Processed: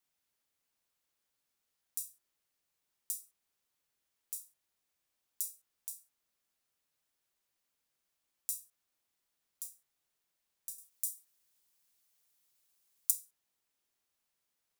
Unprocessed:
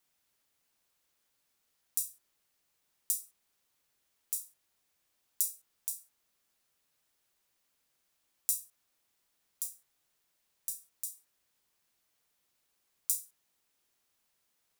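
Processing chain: 10.78–13.11 s: treble shelf 4 kHz +10.5 dB; trim -6.5 dB

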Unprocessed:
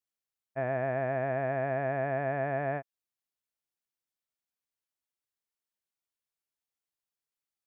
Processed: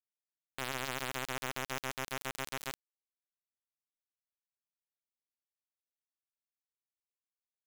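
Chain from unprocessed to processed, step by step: bit crusher 4-bit; trim -5 dB

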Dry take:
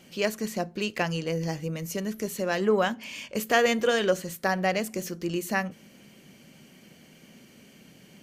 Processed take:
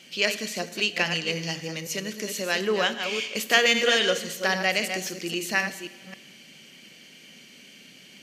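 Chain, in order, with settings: chunks repeated in reverse 267 ms, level -7.5 dB; frequency weighting D; Schroeder reverb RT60 1.2 s, combs from 28 ms, DRR 13.5 dB; trim -2 dB

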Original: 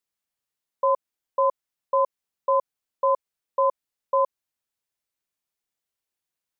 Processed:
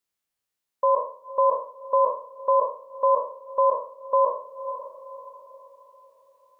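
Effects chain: spectral sustain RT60 0.46 s; echo that smears into a reverb 530 ms, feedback 42%, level -15 dB; gain riding within 4 dB 0.5 s; trim +2 dB

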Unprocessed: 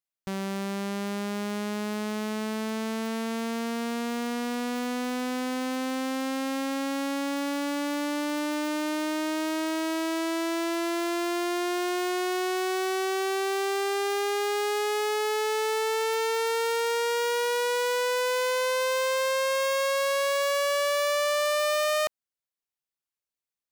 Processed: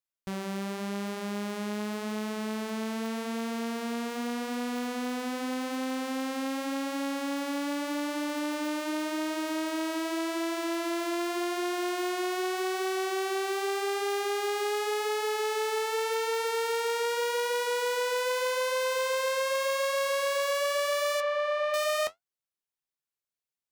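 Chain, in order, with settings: 21.20–21.74 s: low-pass 2.3 kHz 12 dB/octave; flange 0.85 Hz, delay 7.1 ms, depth 7.9 ms, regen -58%; trim +1.5 dB

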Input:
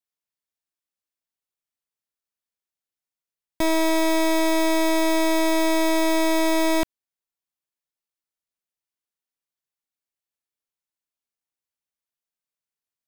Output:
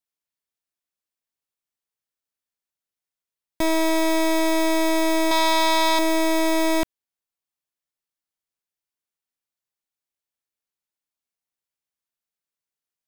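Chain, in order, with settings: 5.31–5.99 s: graphic EQ 250/500/1000/4000 Hz -7/-6/+9/+9 dB

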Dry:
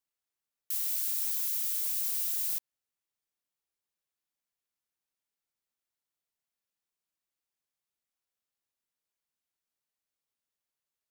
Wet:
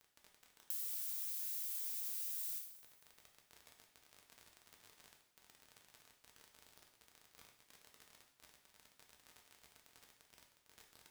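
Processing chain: crackle 41 per s -45 dBFS; compression 12:1, threshold -45 dBFS, peak gain reduction 17 dB; two-slope reverb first 0.72 s, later 2.1 s, from -17 dB, DRR 0.5 dB; trim +3 dB

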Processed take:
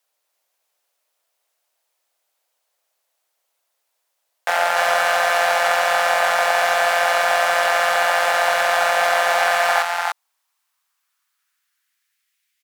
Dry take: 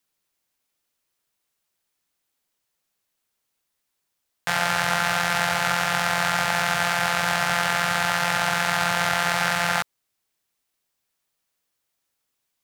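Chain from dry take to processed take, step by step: delay 296 ms -5.5 dB; one-sided clip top -14.5 dBFS; high-pass sweep 610 Hz -> 2 kHz, 9.35–12.37 s; trim +3 dB

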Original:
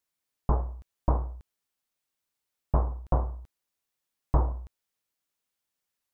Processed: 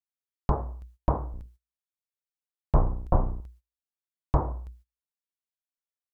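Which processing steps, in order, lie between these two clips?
1.32–3.41 s: octave divider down 1 oct, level 0 dB; hum notches 60/120/180/240/300/360 Hz; gate -54 dBFS, range -20 dB; trim +2.5 dB

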